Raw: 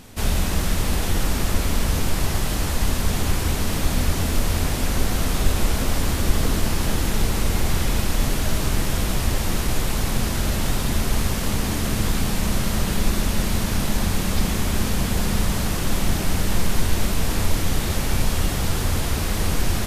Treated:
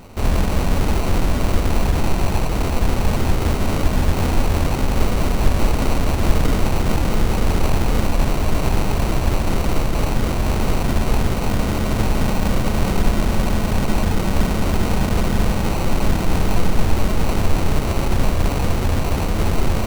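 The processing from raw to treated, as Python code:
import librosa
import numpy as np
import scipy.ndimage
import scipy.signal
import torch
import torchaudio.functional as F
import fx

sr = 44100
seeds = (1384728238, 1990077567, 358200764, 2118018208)

y = fx.sample_hold(x, sr, seeds[0], rate_hz=1700.0, jitter_pct=0)
y = y * librosa.db_to_amplitude(3.5)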